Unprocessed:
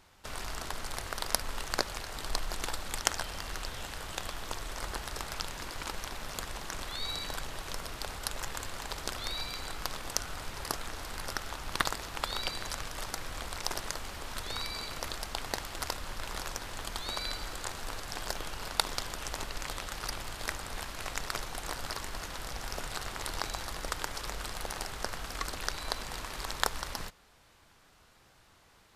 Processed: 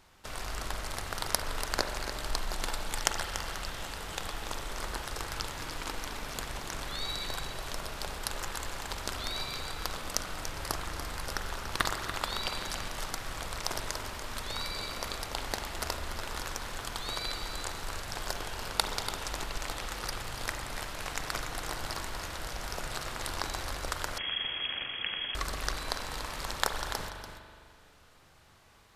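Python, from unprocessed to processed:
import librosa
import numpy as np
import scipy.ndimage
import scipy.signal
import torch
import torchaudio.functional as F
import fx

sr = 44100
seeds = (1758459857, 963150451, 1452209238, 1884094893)

y = x + 10.0 ** (-10.0 / 20.0) * np.pad(x, (int(288 * sr / 1000.0), 0))[:len(x)]
y = fx.rev_spring(y, sr, rt60_s=2.1, pass_ms=(41,), chirp_ms=30, drr_db=5.5)
y = fx.freq_invert(y, sr, carrier_hz=3300, at=(24.18, 25.35))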